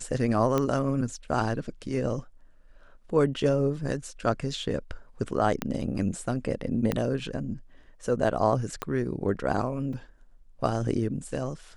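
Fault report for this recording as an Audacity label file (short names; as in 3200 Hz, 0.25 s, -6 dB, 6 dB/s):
0.580000	0.580000	pop -13 dBFS
5.620000	5.620000	pop -12 dBFS
6.920000	6.920000	pop -12 dBFS
8.820000	8.820000	pop -15 dBFS
9.930000	9.930000	gap 3.3 ms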